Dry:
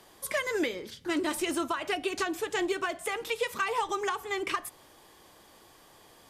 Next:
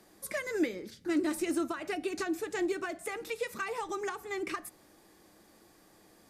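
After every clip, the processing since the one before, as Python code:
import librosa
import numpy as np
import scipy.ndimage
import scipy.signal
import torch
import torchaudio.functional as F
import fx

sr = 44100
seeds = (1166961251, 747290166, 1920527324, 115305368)

y = fx.graphic_eq_31(x, sr, hz=(200, 315, 1000, 3150), db=(9, 7, -7, -9))
y = y * librosa.db_to_amplitude(-4.5)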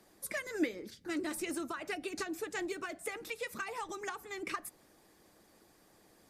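y = fx.hpss(x, sr, part='harmonic', gain_db=-8)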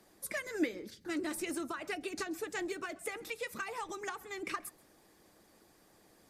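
y = x + 10.0 ** (-24.0 / 20.0) * np.pad(x, (int(133 * sr / 1000.0), 0))[:len(x)]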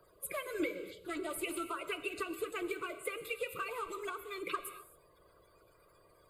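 y = fx.spec_quant(x, sr, step_db=30)
y = fx.fixed_phaser(y, sr, hz=1200.0, stages=8)
y = fx.rev_gated(y, sr, seeds[0], gate_ms=290, shape='flat', drr_db=10.5)
y = y * librosa.db_to_amplitude(3.5)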